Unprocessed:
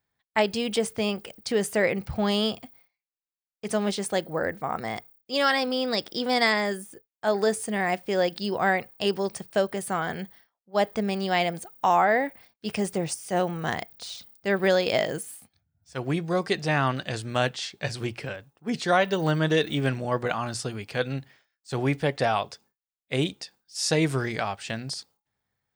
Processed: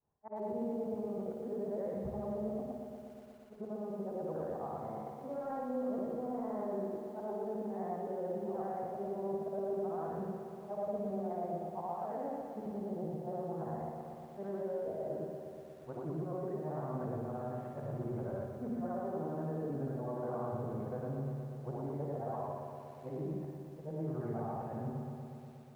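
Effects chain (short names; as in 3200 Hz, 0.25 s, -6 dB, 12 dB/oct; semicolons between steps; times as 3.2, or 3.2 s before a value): short-time reversal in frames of 0.214 s; de-esser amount 95%; inverse Chebyshev low-pass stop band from 4200 Hz, stop band 70 dB; low shelf 170 Hz -3 dB; notches 60/120/180/240/300/360/420/480/540 Hz; reverse; compressor 10:1, threshold -40 dBFS, peak gain reduction 17.5 dB; reverse; limiter -39.5 dBFS, peak gain reduction 8 dB; flutter echo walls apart 9.6 m, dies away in 0.51 s; on a send at -18 dB: reverb RT60 0.95 s, pre-delay 90 ms; on the sum: lo-fi delay 0.12 s, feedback 80%, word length 12-bit, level -7.5 dB; gain +6 dB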